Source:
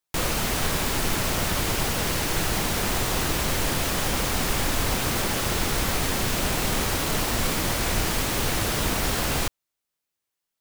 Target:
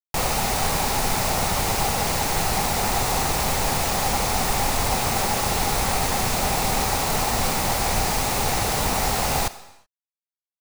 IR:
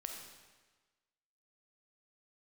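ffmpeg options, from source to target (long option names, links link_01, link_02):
-filter_complex "[0:a]equalizer=frequency=315:width_type=o:width=0.33:gain=-7,equalizer=frequency=800:width_type=o:width=0.33:gain=10,equalizer=frequency=1600:width_type=o:width=0.33:gain=-5,equalizer=frequency=3150:width_type=o:width=0.33:gain=-7,equalizer=frequency=16000:width_type=o:width=0.33:gain=-12,acrusher=bits=4:mix=0:aa=0.000001,asplit=2[link_01][link_02];[1:a]atrim=start_sample=2205,afade=type=out:start_time=0.43:duration=0.01,atrim=end_sample=19404,lowshelf=frequency=240:gain=-11.5[link_03];[link_02][link_03]afir=irnorm=-1:irlink=0,volume=-6dB[link_04];[link_01][link_04]amix=inputs=2:normalize=0"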